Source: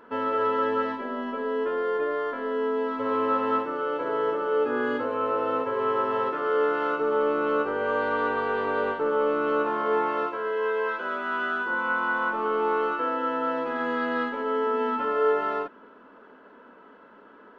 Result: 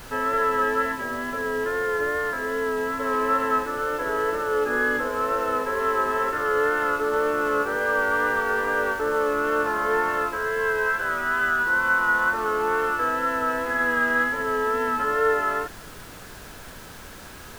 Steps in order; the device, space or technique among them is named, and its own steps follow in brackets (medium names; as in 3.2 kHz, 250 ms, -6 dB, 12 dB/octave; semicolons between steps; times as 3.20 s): horn gramophone (band-pass 200–3600 Hz; peaking EQ 1.7 kHz +11.5 dB 0.48 oct; wow and flutter 26 cents; pink noise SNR 18 dB)